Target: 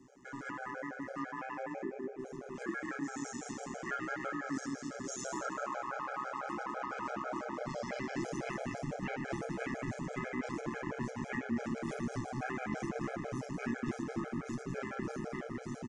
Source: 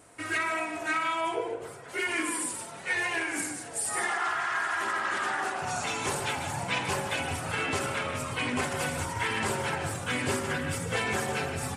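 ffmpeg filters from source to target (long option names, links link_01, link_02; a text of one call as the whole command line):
ffmpeg -i in.wav -af "dynaudnorm=framelen=810:gausssize=5:maxgain=10dB,aecho=1:1:153|306|459|612|765:0.316|0.149|0.0699|0.0328|0.0154,asetrate=32667,aresample=44100,afreqshift=51,tremolo=f=130:d=0.788,equalizer=frequency=250:width_type=o:width=1:gain=8,equalizer=frequency=1000:width_type=o:width=1:gain=-4,equalizer=frequency=4000:width_type=o:width=1:gain=-10,equalizer=frequency=8000:width_type=o:width=1:gain=-8,acompressor=threshold=-38dB:ratio=3,afftfilt=real='re*gt(sin(2*PI*6*pts/sr)*(1-2*mod(floor(b*sr/1024/420),2)),0)':imag='im*gt(sin(2*PI*6*pts/sr)*(1-2*mod(floor(b*sr/1024/420),2)),0)':win_size=1024:overlap=0.75,volume=1.5dB" out.wav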